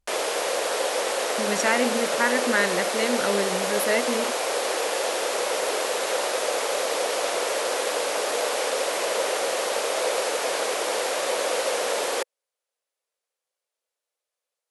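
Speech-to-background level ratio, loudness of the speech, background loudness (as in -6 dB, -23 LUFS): -1.0 dB, -26.0 LUFS, -25.0 LUFS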